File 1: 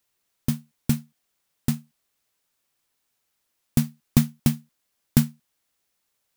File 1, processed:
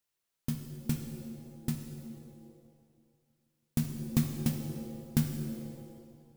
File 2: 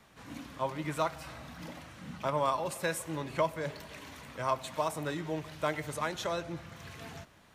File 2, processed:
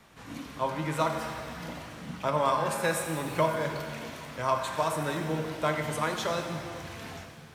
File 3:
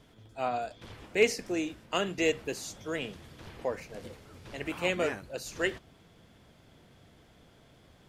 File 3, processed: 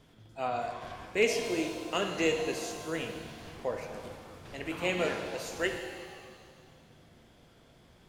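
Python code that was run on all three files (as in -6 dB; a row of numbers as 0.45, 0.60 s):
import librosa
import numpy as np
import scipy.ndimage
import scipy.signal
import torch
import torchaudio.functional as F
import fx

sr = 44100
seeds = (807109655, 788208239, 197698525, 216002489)

y = fx.echo_wet_lowpass(x, sr, ms=162, feedback_pct=70, hz=400.0, wet_db=-16)
y = fx.rev_shimmer(y, sr, seeds[0], rt60_s=1.8, semitones=7, shimmer_db=-8, drr_db=4.5)
y = y * 10.0 ** (-12 / 20.0) / np.max(np.abs(y))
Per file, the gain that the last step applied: -10.0, +3.0, -2.0 dB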